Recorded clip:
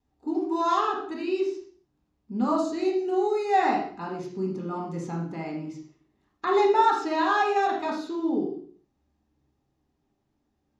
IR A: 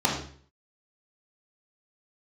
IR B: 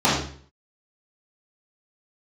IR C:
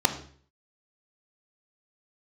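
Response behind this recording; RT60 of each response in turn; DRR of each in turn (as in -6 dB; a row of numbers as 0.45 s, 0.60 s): A; 0.50 s, 0.50 s, 0.50 s; -2.0 dB, -9.0 dB, 7.0 dB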